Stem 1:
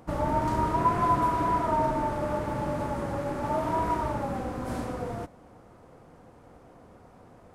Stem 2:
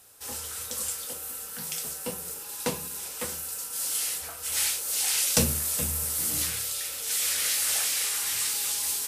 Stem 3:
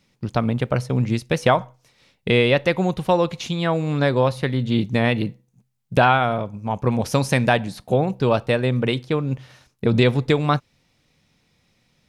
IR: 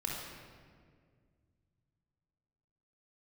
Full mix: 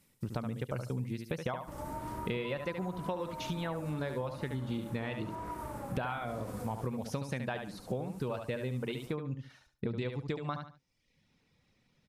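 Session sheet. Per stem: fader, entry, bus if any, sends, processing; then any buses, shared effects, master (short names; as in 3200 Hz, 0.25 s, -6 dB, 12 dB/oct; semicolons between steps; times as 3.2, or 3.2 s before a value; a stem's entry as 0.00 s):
-1.5 dB, 1.60 s, no send, no echo send, compressor 3:1, threshold -39 dBFS, peak gain reduction 15 dB
-18.5 dB, 0.00 s, no send, echo send -15.5 dB, bell 760 Hz -14 dB 2.9 oct; negative-ratio compressor -32 dBFS, ratio -0.5; auto duck -8 dB, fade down 0.20 s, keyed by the third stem
-5.5 dB, 0.00 s, no send, echo send -8.5 dB, reverb removal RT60 0.71 s; high shelf 3900 Hz -7 dB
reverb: off
echo: feedback echo 72 ms, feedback 20%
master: bell 700 Hz -3.5 dB 0.3 oct; compressor 6:1, threshold -33 dBFS, peak gain reduction 14.5 dB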